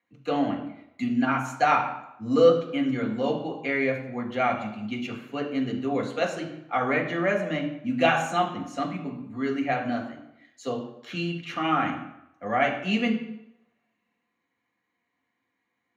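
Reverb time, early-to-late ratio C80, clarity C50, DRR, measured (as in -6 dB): 0.85 s, 10.5 dB, 7.5 dB, 0.0 dB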